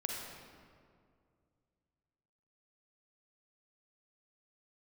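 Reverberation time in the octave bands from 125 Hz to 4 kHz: 3.0, 2.6, 2.4, 2.0, 1.6, 1.3 seconds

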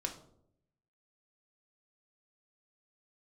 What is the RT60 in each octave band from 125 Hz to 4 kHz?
1.1, 0.90, 0.85, 0.60, 0.40, 0.40 seconds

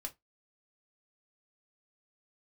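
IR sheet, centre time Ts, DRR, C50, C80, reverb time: 6 ms, 2.0 dB, 21.0 dB, 33.0 dB, 0.15 s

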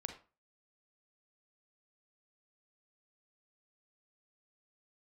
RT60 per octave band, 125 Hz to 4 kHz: 0.35, 0.35, 0.35, 0.35, 0.30, 0.25 seconds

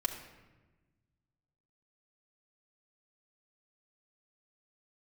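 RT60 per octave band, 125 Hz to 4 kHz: 2.2, 1.8, 1.3, 1.1, 1.1, 0.80 seconds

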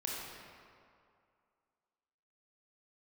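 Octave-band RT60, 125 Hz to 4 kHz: 2.1, 2.1, 2.3, 2.4, 1.9, 1.4 seconds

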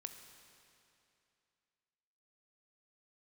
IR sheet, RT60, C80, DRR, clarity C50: 2.7 s, 8.5 dB, 6.5 dB, 7.5 dB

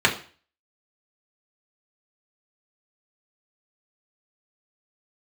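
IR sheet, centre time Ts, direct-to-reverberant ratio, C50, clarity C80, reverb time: 14 ms, −2.5 dB, 12.0 dB, 16.5 dB, 0.40 s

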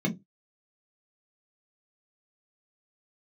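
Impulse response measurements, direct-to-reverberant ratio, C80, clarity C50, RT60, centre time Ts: 0.0 dB, 26.0 dB, 16.0 dB, non-exponential decay, 9 ms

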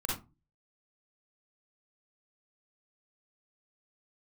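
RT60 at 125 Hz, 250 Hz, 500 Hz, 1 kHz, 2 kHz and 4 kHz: 0.50, 0.40, 0.25, 0.25, 0.20, 0.15 seconds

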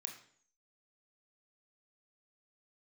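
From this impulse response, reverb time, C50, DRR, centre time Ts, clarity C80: 0.55 s, 7.0 dB, 2.0 dB, 22 ms, 10.5 dB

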